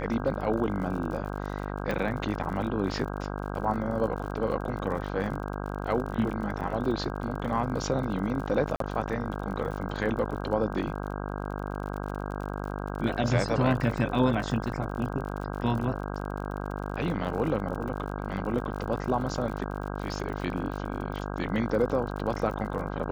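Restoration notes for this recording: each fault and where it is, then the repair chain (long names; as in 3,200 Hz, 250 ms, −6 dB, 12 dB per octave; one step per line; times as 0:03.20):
mains buzz 50 Hz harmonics 32 −34 dBFS
surface crackle 52 per second −36 dBFS
0:01.91: click −18 dBFS
0:08.76–0:08.80: drop-out 43 ms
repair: click removal
hum removal 50 Hz, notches 32
repair the gap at 0:08.76, 43 ms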